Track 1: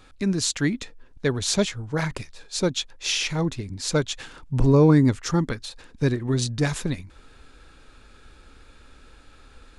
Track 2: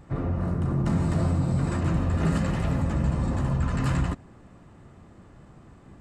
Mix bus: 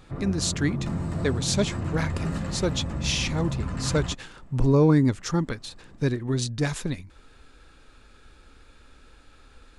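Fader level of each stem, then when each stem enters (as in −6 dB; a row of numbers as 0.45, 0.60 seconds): −2.5, −5.0 decibels; 0.00, 0.00 seconds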